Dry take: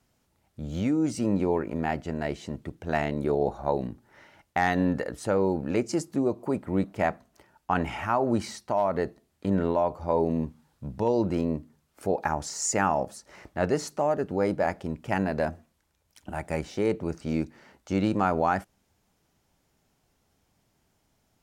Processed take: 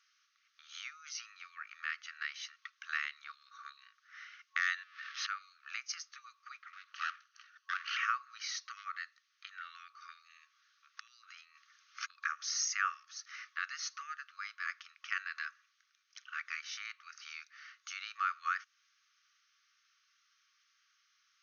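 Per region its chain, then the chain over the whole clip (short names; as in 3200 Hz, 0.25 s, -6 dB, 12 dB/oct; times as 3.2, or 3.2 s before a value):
4.83–5.27 zero-crossing step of -29 dBFS + LPF 3600 Hz + compressor 20:1, threshold -34 dBFS
6.73–7.97 minimum comb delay 0.67 ms + compressor 4:1, threshold -32 dBFS
10.97–12.1 HPF 52 Hz + negative-ratio compressor -35 dBFS
whole clip: compressor 2:1, threshold -33 dBFS; FFT band-pass 1100–6600 Hz; gain +4.5 dB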